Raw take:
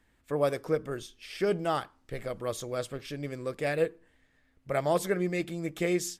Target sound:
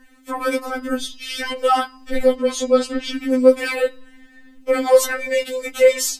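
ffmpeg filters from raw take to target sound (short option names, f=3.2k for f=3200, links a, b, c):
-filter_complex "[0:a]asettb=1/sr,asplit=3[a][b][c];[a]atrim=end=2.344[d];[b]atrim=start=2.34:end=3.13,asetpts=PTS-STARTPTS,afade=t=in:d=0.004:c=qsin,afade=t=out:st=0.786:d=0.004:c=qsin,lowpass=7.1k[e];[c]atrim=start=3.126[f];[d][e]acrossfade=d=0.004:c1=hsin:c2=qsin[g];[g][f]acrossfade=d=0.004:c1=qsin:c2=hsin,asoftclip=type=tanh:threshold=-18.5dB,bandreject=f=149:t=h:w=4,bandreject=f=298:t=h:w=4,bandreject=f=447:t=h:w=4,bandreject=f=596:t=h:w=4,bandreject=f=745:t=h:w=4,bandreject=f=894:t=h:w=4,bandreject=f=1.043k:t=h:w=4,bandreject=f=1.192k:t=h:w=4,bandreject=f=1.341k:t=h:w=4,bandreject=f=1.49k:t=h:w=4,bandreject=f=1.639k:t=h:w=4,bandreject=f=1.788k:t=h:w=4,bandreject=f=1.937k:t=h:w=4,bandreject=f=2.086k:t=h:w=4,bandreject=f=2.235k:t=h:w=4,bandreject=f=2.384k:t=h:w=4,bandreject=f=2.533k:t=h:w=4,bandreject=f=2.682k:t=h:w=4,bandreject=f=2.831k:t=h:w=4,bandreject=f=2.98k:t=h:w=4,bandreject=f=3.129k:t=h:w=4,bandreject=f=3.278k:t=h:w=4,bandreject=f=3.427k:t=h:w=4,bandreject=f=3.576k:t=h:w=4,bandreject=f=3.725k:t=h:w=4,bandreject=f=3.874k:t=h:w=4,bandreject=f=4.023k:t=h:w=4,bandreject=f=4.172k:t=h:w=4,bandreject=f=4.321k:t=h:w=4,bandreject=f=4.47k:t=h:w=4,bandreject=f=4.619k:t=h:w=4,bandreject=f=4.768k:t=h:w=4,bandreject=f=4.917k:t=h:w=4,bandreject=f=5.066k:t=h:w=4,bandreject=f=5.215k:t=h:w=4,alimiter=level_in=22dB:limit=-1dB:release=50:level=0:latency=1,afftfilt=real='re*3.46*eq(mod(b,12),0)':imag='im*3.46*eq(mod(b,12),0)':win_size=2048:overlap=0.75,volume=-4dB"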